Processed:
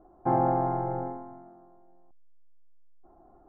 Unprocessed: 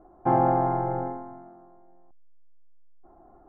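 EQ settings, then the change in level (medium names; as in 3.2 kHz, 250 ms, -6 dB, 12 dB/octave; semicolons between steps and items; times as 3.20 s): low-pass 1.7 kHz 6 dB/octave; -2.5 dB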